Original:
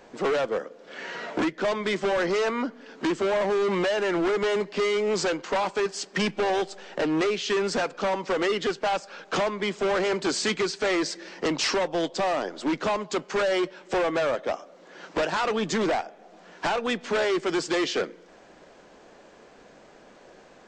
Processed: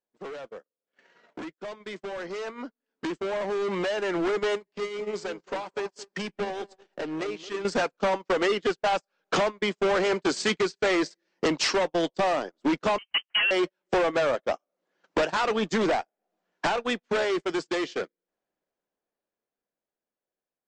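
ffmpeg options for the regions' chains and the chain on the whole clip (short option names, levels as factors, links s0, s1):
-filter_complex "[0:a]asettb=1/sr,asplit=3[s0][s1][s2];[s0]atrim=end=4.554[s3];[s1]atrim=start=4.55:end=7.65,asetpts=PTS-STARTPTS,afade=t=in:d=0.004:c=qsin,afade=t=out:st=3.096:d=0.004:c=qsin,acompressor=threshold=0.0251:ratio=2.5:attack=3.2:release=140:knee=1:detection=peak,asplit=2[s4][s5];[s5]adelay=221,lowpass=f=1400:p=1,volume=0.398,asplit=2[s6][s7];[s7]adelay=221,lowpass=f=1400:p=1,volume=0.27,asplit=2[s8][s9];[s9]adelay=221,lowpass=f=1400:p=1,volume=0.27[s10];[s4][s6][s8][s10]amix=inputs=4:normalize=0,atrim=end_sample=136710[s11];[s2]atrim=start=7.646[s12];[s3][s11]acrossfade=d=0.004:c1=hsin:c2=qsin[s13];[s13][s12]acrossfade=d=0.004:c1=qsin:c2=hsin,asettb=1/sr,asplit=3[s14][s15][s16];[s14]atrim=end=12.984[s17];[s15]atrim=start=12.98:end=13.51,asetpts=PTS-STARTPTS,afade=t=in:d=0.004:c=qsin,afade=t=out:st=0.526:d=0.004:c=qsin,aeval=exprs='sgn(val(0))*max(abs(val(0))-0.00237,0)':c=same,lowpass=f=2800:t=q:w=0.5098,lowpass=f=2800:t=q:w=0.6013,lowpass=f=2800:t=q:w=0.9,lowpass=f=2800:t=q:w=2.563,afreqshift=-3300[s18];[s16]atrim=start=13.506[s19];[s17][s18]acrossfade=d=0.004:c1=hsin:c2=qsin[s20];[s20][s19]acrossfade=d=0.004:c1=qsin:c2=hsin,acompressor=threshold=0.00794:ratio=3,agate=range=0.00631:threshold=0.0112:ratio=16:detection=peak,dynaudnorm=f=570:g=13:m=5.62"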